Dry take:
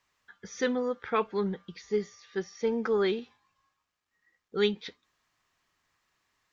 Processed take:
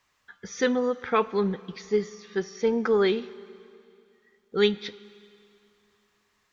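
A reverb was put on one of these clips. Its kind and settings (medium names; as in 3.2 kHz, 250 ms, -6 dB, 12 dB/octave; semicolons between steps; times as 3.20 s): Schroeder reverb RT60 2.6 s, combs from 33 ms, DRR 18 dB; trim +4.5 dB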